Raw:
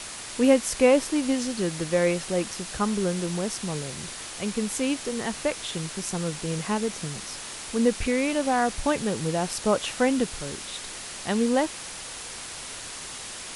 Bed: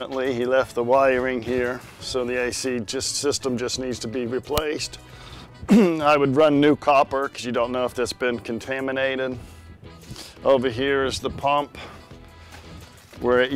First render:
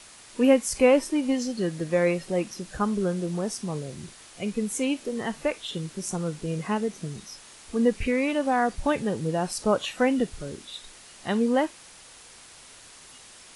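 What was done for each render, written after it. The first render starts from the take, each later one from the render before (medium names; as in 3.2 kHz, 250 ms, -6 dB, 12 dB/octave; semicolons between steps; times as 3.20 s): noise print and reduce 11 dB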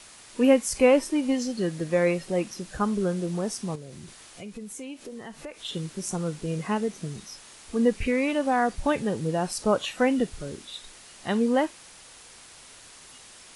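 3.75–5.65 s: compression 3:1, threshold -39 dBFS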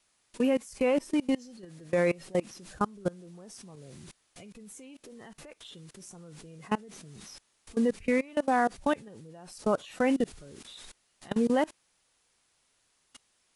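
level held to a coarse grid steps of 24 dB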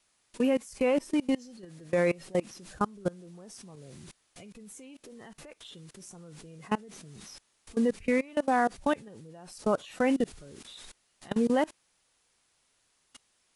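no audible change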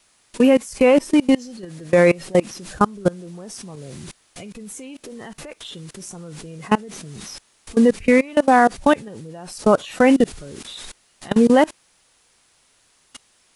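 trim +12 dB; peak limiter -3 dBFS, peak gain reduction 1 dB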